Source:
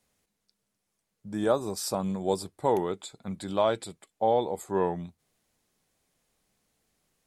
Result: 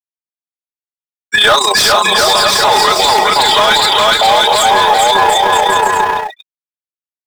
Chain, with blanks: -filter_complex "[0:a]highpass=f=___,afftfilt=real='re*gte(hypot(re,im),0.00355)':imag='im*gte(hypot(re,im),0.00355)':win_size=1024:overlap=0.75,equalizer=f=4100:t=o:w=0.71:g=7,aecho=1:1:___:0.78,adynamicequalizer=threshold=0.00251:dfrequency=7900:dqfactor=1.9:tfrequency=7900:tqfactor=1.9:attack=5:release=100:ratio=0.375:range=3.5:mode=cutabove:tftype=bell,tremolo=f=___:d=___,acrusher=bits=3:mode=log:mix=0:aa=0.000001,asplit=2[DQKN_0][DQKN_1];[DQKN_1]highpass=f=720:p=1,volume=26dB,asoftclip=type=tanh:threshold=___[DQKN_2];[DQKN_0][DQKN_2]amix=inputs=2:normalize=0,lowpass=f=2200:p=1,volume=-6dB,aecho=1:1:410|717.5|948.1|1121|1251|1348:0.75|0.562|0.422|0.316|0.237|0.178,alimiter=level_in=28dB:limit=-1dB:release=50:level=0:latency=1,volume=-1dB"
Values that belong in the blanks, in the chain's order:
1500, 4.8, 30, 0.71, -20.5dB